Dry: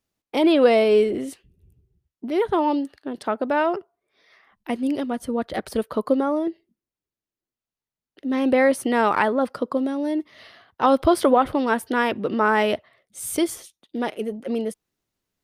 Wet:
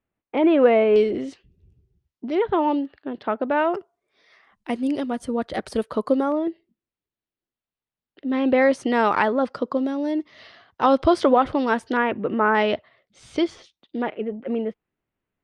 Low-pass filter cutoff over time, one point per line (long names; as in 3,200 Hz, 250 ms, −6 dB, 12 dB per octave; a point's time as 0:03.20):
low-pass filter 24 dB per octave
2,500 Hz
from 0:00.96 5,900 Hz
from 0:02.35 3,500 Hz
from 0:03.75 9,300 Hz
from 0:06.32 4,100 Hz
from 0:08.62 6,900 Hz
from 0:11.97 2,600 Hz
from 0:12.55 4,700 Hz
from 0:14.02 2,700 Hz